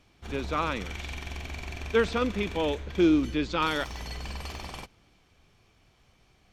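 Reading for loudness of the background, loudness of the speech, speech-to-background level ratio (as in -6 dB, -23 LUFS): -39.0 LUFS, -28.0 LUFS, 11.0 dB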